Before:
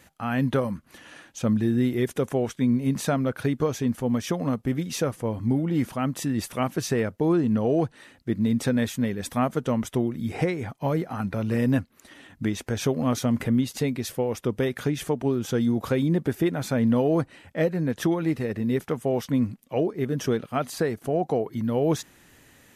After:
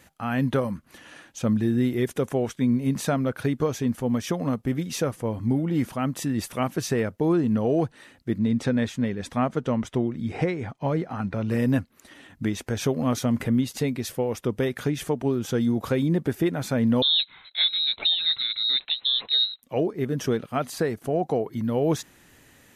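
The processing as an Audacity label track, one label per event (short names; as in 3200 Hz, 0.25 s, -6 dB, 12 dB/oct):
8.380000	11.500000	air absorption 66 m
17.020000	19.630000	inverted band carrier 4000 Hz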